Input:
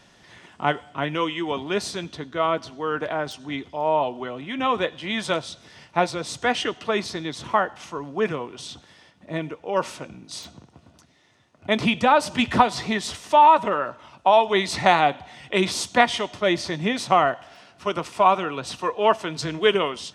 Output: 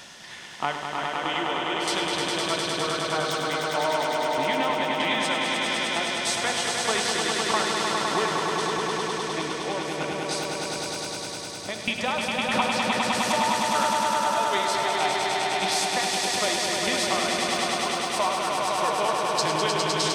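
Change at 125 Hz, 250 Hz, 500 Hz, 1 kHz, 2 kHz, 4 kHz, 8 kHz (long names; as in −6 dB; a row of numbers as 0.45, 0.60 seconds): −3.5, −3.5, −3.5, −3.0, +1.0, +4.0, +8.0 decibels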